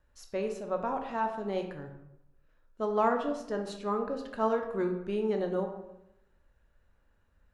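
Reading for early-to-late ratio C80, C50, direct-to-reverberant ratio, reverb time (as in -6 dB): 10.0 dB, 7.0 dB, 3.5 dB, 0.85 s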